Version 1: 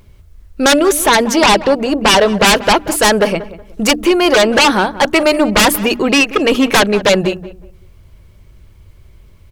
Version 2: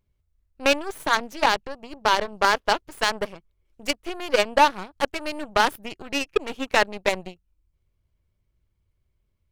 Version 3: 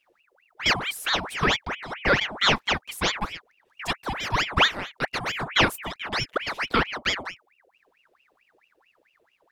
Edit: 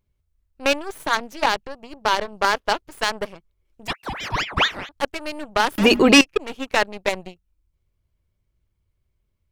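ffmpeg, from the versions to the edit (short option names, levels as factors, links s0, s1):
-filter_complex "[1:a]asplit=3[s0][s1][s2];[s0]atrim=end=3.882[s3];[2:a]atrim=start=3.878:end=4.892[s4];[s1]atrim=start=4.888:end=5.782[s5];[0:a]atrim=start=5.778:end=6.212[s6];[s2]atrim=start=6.208[s7];[s3][s4]acrossfade=d=0.004:c1=hsin:c2=hsin[s8];[s8][s5]acrossfade=d=0.004:c1=hsin:c2=hsin[s9];[s9][s6]acrossfade=d=0.004:c1=hsin:c2=hsin[s10];[s10][s7]acrossfade=d=0.004:c1=hsin:c2=hsin"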